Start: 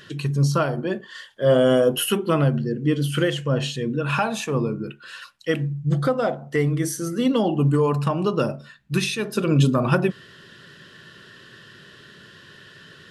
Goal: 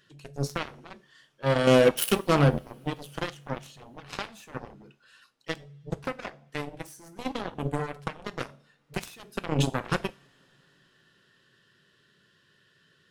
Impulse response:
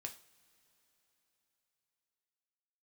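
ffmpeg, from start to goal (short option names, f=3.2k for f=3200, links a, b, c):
-filter_complex "[0:a]asettb=1/sr,asplit=3[a][b][c];[a]atrim=end=1.674[d];[b]atrim=start=1.67:end=2.59,asetpts=PTS-STARTPTS,afade=t=in:d=0.004:c=qsin,afade=t=out:st=0.916:d=0.004:c=qsin,acontrast=33[e];[c]atrim=start=2.586[f];[d][e]acrossfade=d=0.004:c1=hsin:c2=qsin[g];[g][f]acrossfade=d=0.004:c1=qsin:c2=hsin,aeval=exprs='0.631*(cos(1*acos(clip(val(0)/0.631,-1,1)))-cos(1*PI/2))+0.0282*(cos(3*acos(clip(val(0)/0.631,-1,1)))-cos(3*PI/2))+0.1*(cos(7*acos(clip(val(0)/0.631,-1,1)))-cos(7*PI/2))':c=same,asplit=2[h][i];[1:a]atrim=start_sample=2205,highshelf=f=3.8k:g=11.5[j];[i][j]afir=irnorm=-1:irlink=0,volume=-7dB[k];[h][k]amix=inputs=2:normalize=0,volume=-8dB"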